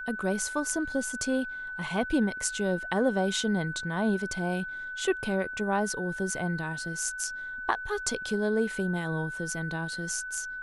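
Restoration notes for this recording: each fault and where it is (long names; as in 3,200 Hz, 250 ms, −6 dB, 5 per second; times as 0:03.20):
whistle 1,500 Hz −35 dBFS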